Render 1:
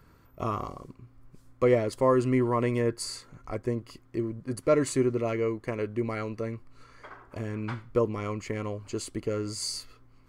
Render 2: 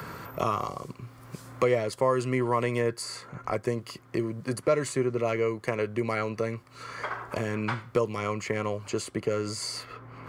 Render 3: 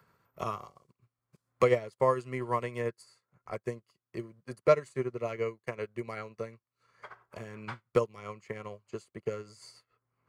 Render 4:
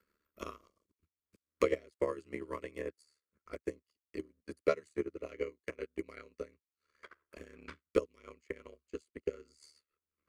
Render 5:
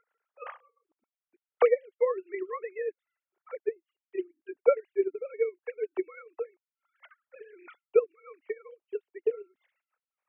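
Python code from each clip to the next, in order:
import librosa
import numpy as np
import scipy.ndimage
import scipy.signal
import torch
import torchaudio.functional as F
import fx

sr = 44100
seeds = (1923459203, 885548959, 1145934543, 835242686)

y1 = scipy.signal.sosfilt(scipy.signal.butter(2, 130.0, 'highpass', fs=sr, output='sos'), x)
y1 = fx.peak_eq(y1, sr, hz=280.0, db=-8.5, octaves=0.87)
y1 = fx.band_squash(y1, sr, depth_pct=70)
y1 = F.gain(torch.from_numpy(y1), 4.0).numpy()
y2 = fx.peak_eq(y1, sr, hz=290.0, db=-10.5, octaves=0.22)
y2 = fx.upward_expand(y2, sr, threshold_db=-48.0, expansion=2.5)
y2 = F.gain(torch.from_numpy(y2), 3.0).numpy()
y3 = y2 * np.sin(2.0 * np.pi * 37.0 * np.arange(len(y2)) / sr)
y3 = fx.fixed_phaser(y3, sr, hz=330.0, stages=4)
y3 = fx.transient(y3, sr, attack_db=8, sustain_db=-3)
y3 = F.gain(torch.from_numpy(y3), -5.0).numpy()
y4 = fx.sine_speech(y3, sr)
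y4 = F.gain(torch.from_numpy(y4), 8.0).numpy()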